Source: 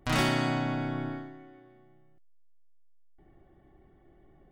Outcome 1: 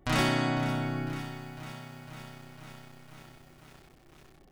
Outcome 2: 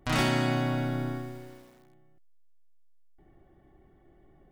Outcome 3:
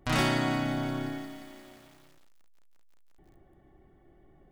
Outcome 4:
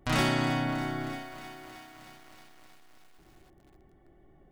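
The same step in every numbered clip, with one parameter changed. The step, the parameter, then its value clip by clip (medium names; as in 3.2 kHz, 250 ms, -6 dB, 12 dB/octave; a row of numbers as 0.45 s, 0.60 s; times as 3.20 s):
bit-crushed delay, time: 502 ms, 81 ms, 176 ms, 314 ms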